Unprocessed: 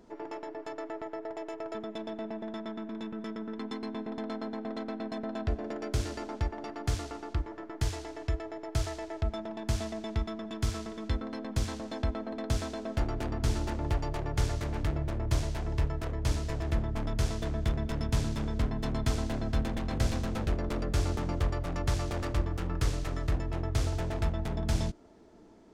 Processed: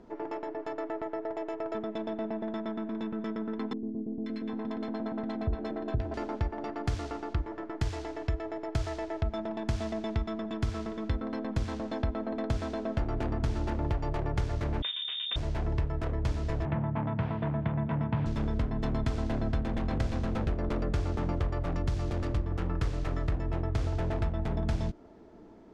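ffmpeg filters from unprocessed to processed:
-filter_complex "[0:a]asettb=1/sr,asplit=3[s0][s1][s2];[s0]atrim=end=3.734[s3];[s1]atrim=start=3.73:end=6.14,asetpts=PTS-STARTPTS,afade=t=in:d=0.004:c=qsin,afade=t=out:st=2.406:d=0.004:c=qsin,acrossover=split=440|1400[s4][s5][s6];[s6]adelay=530[s7];[s5]adelay=760[s8];[s4][s8][s7]amix=inputs=3:normalize=0,atrim=end_sample=106281[s9];[s2]atrim=start=6.136[s10];[s3][s9]acrossfade=d=0.004:c1=hsin:c2=qsin[s11];[s11][s10]acrossfade=d=0.004:c1=qsin:c2=hsin,asettb=1/sr,asplit=3[s12][s13][s14];[s12]atrim=end=6.834[s15];[s13]atrim=start=6.83:end=10.43,asetpts=PTS-STARTPTS,afade=t=in:d=0.004:c=qsin,afade=t=out:st=3.596:d=0.004:c=qsin,equalizer=f=7800:w=0.35:g=3[s16];[s14]atrim=start=10.426[s17];[s15][s16]acrossfade=d=0.004:c1=hsin:c2=qsin[s18];[s18][s17]acrossfade=d=0.004:c1=qsin:c2=hsin,asettb=1/sr,asplit=3[s19][s20][s21];[s19]atrim=end=14.824[s22];[s20]atrim=start=14.82:end=15.36,asetpts=PTS-STARTPTS,afade=t=in:d=0.004:c=qsin,afade=t=out:st=0.536:d=0.004:c=qsin,lowpass=f=3100:t=q:w=0.5098,lowpass=f=3100:t=q:w=0.6013,lowpass=f=3100:t=q:w=0.9,lowpass=f=3100:t=q:w=2.563,afreqshift=-3700[s23];[s21]atrim=start=15.356[s24];[s22][s23]acrossfade=d=0.004:c1=hsin:c2=qsin[s25];[s25][s24]acrossfade=d=0.004:c1=qsin:c2=hsin,asettb=1/sr,asplit=3[s26][s27][s28];[s26]atrim=end=16.654[s29];[s27]atrim=start=16.65:end=18.26,asetpts=PTS-STARTPTS,afade=t=in:d=0.004:c=qsin,afade=t=out:st=1.606:d=0.004:c=qsin,highpass=f=100:w=0.5412,highpass=f=100:w=1.3066,equalizer=f=160:t=q:w=4:g=10,equalizer=f=390:t=q:w=4:g=-9,equalizer=f=920:t=q:w=4:g=7,lowpass=f=2800:w=0.5412,lowpass=f=2800:w=1.3066[s30];[s28]atrim=start=18.256[s31];[s29][s30]acrossfade=d=0.004:c1=hsin:c2=qsin[s32];[s32][s31]acrossfade=d=0.004:c1=qsin:c2=hsin,asettb=1/sr,asplit=3[s33][s34][s35];[s33]atrim=end=21.724[s36];[s34]atrim=start=21.72:end=22.52,asetpts=PTS-STARTPTS,afade=t=in:d=0.004:c=qsin,afade=t=out:st=0.796:d=0.004:c=qsin,acrossover=split=420|3000[s37][s38][s39];[s38]acompressor=threshold=0.00631:ratio=2.5:attack=3.2:release=140:knee=2.83:detection=peak[s40];[s37][s40][s39]amix=inputs=3:normalize=0[s41];[s35]atrim=start=22.516[s42];[s36][s41]acrossfade=d=0.004:c1=hsin:c2=qsin[s43];[s43][s42]acrossfade=d=0.004:c1=qsin:c2=hsin,acompressor=threshold=0.0355:ratio=6,aemphasis=mode=reproduction:type=75fm,volume=1.41"

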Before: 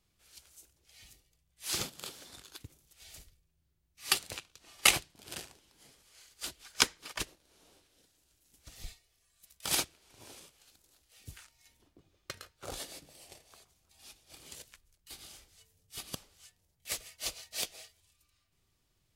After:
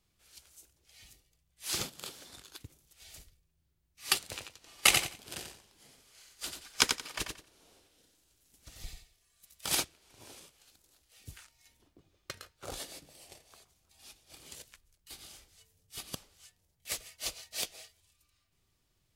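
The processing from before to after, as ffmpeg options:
-filter_complex "[0:a]asettb=1/sr,asplit=3[s0][s1][s2];[s0]atrim=end=4.204[s3];[s1]atrim=start=4.2:end=9.64,asetpts=PTS-STARTPTS,afade=t=in:d=0.004:c=qsin,afade=t=out:st=5.436:d=0.004:c=qsin,aecho=1:1:89|178|267:0.501|0.115|0.0265,atrim=end_sample=239904[s4];[s2]atrim=start=9.636[s5];[s3][s4]acrossfade=d=0.004:c1=hsin:c2=qsin[s6];[s6][s5]acrossfade=d=0.004:c1=qsin:c2=hsin"

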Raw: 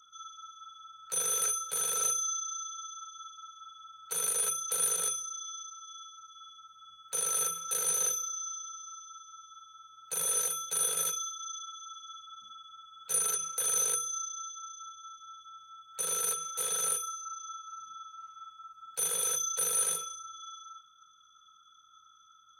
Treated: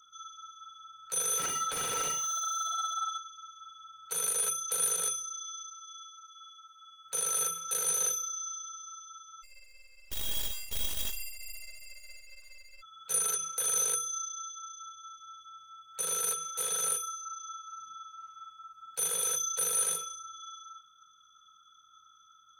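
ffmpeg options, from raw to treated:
-filter_complex "[0:a]asplit=3[s0][s1][s2];[s0]afade=t=out:st=1.38:d=0.02[s3];[s1]asplit=2[s4][s5];[s5]highpass=f=720:p=1,volume=14.1,asoftclip=type=tanh:threshold=0.126[s6];[s4][s6]amix=inputs=2:normalize=0,lowpass=f=1900:p=1,volume=0.501,afade=t=in:st=1.38:d=0.02,afade=t=out:st=3.18:d=0.02[s7];[s2]afade=t=in:st=3.18:d=0.02[s8];[s3][s7][s8]amix=inputs=3:normalize=0,asettb=1/sr,asplit=3[s9][s10][s11];[s9]atrim=end=5.724[s12];[s10]atrim=start=5.72:end=7.06,asetpts=PTS-STARTPTS,afade=t=in:d=0.004:c=qsin,afade=t=out:st=1.336:d=0.004:c=qsin,highpass=f=590:p=1[s13];[s11]atrim=start=7.056[s14];[s12][s13]acrossfade=d=0.004:c1=hsin:c2=qsin[s15];[s15][s14]acrossfade=d=0.004:c1=qsin:c2=hsin,asplit=3[s16][s17][s18];[s16]afade=t=out:st=9.42:d=0.02[s19];[s17]aeval=exprs='abs(val(0))':c=same,afade=t=in:st=9.42:d=0.02,afade=t=out:st=12.81:d=0.02[s20];[s18]afade=t=in:st=12.81:d=0.02[s21];[s19][s20][s21]amix=inputs=3:normalize=0"

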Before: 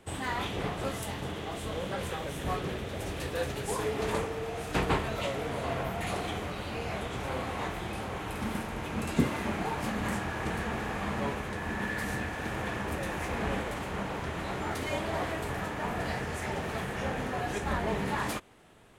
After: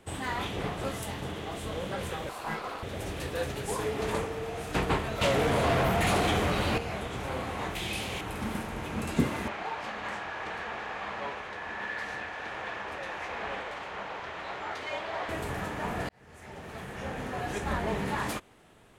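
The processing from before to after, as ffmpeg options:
-filter_complex "[0:a]asettb=1/sr,asplit=3[s0][s1][s2];[s0]atrim=end=2.294[s3];[s1]atrim=start=2.29:end=2.83,asetpts=PTS-STARTPTS,afade=t=in:d=0.004:c=qsin,afade=t=out:st=0.536:d=0.004:c=qsin,aeval=exprs='val(0)*sin(2*PI*890*n/s)':c=same[s4];[s2]atrim=start=2.826[s5];[s3][s4]acrossfade=d=0.004:c1=hsin:c2=qsin[s6];[s6][s5]acrossfade=d=0.004:c1=qsin:c2=hsin,asettb=1/sr,asplit=3[s7][s8][s9];[s7]atrim=end=5.214[s10];[s8]atrim=start=5.21:end=6.78,asetpts=PTS-STARTPTS,afade=t=in:d=0.004:c=qsin,afade=t=out:st=1.566:d=0.004:c=qsin,aeval=exprs='0.0944*sin(PI/2*2*val(0)/0.0944)':c=same[s11];[s9]atrim=start=6.776[s12];[s10][s11]acrossfade=d=0.004:c1=hsin:c2=qsin[s13];[s13][s12]acrossfade=d=0.004:c1=qsin:c2=hsin,asettb=1/sr,asplit=3[s14][s15][s16];[s14]atrim=end=7.754[s17];[s15]atrim=start=7.75:end=8.21,asetpts=PTS-STARTPTS,afade=t=in:d=0.004:c=qsin,afade=t=out:st=0.456:d=0.004:c=qsin,highshelf=f=2000:t=q:w=1.5:g=9[s18];[s16]atrim=start=8.206[s19];[s17][s18]acrossfade=d=0.004:c1=hsin:c2=qsin[s20];[s20][s19]acrossfade=d=0.004:c1=qsin:c2=hsin,asettb=1/sr,asplit=3[s21][s22][s23];[s21]atrim=end=9.484[s24];[s22]atrim=start=9.48:end=15.29,asetpts=PTS-STARTPTS,afade=t=in:d=0.004:c=qsin,afade=t=out:st=5.806:d=0.004:c=qsin,acrossover=split=470 5700:gain=0.158 1 0.0891[s25][s26][s27];[s25][s26][s27]amix=inputs=3:normalize=0[s28];[s23]atrim=start=15.286[s29];[s24][s28]acrossfade=d=0.004:c1=hsin:c2=qsin[s30];[s30][s29]acrossfade=d=0.004:c1=qsin:c2=hsin,asplit=2[s31][s32];[s31]atrim=end=16.09,asetpts=PTS-STARTPTS,afade=t=out:st=16.086:d=0.004:c=hsin[s33];[s32]atrim=start=16.09,asetpts=PTS-STARTPTS,afade=t=in:d=1.52[s34];[s33][s34]concat=n=2:v=0:a=1"

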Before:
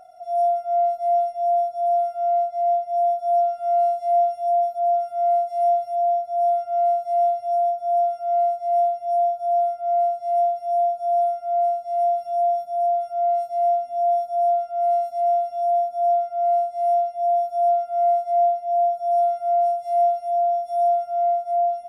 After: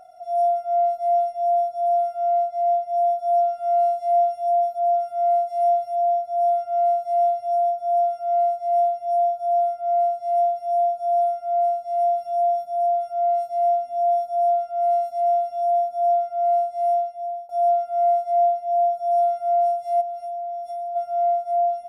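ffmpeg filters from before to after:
-filter_complex "[0:a]asplit=3[s0][s1][s2];[s0]afade=t=out:st=20:d=0.02[s3];[s1]acompressor=threshold=0.0398:ratio=8:attack=3.2:release=140:knee=1:detection=peak,afade=t=in:st=20:d=0.02,afade=t=out:st=20.95:d=0.02[s4];[s2]afade=t=in:st=20.95:d=0.02[s5];[s3][s4][s5]amix=inputs=3:normalize=0,asplit=2[s6][s7];[s6]atrim=end=17.49,asetpts=PTS-STARTPTS,afade=t=out:st=16.85:d=0.64:silence=0.0944061[s8];[s7]atrim=start=17.49,asetpts=PTS-STARTPTS,afade=t=in:d=0.004:c=hsin:silence=0.0944061[s9];[s8][s9]concat=n=2:v=0:a=1"

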